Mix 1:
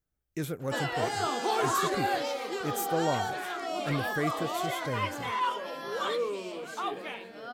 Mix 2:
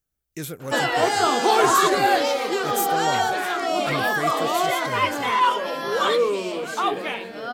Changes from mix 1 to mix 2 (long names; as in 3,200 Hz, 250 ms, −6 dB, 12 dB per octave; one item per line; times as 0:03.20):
speech: add high-shelf EQ 2,700 Hz +9.5 dB
background +10.5 dB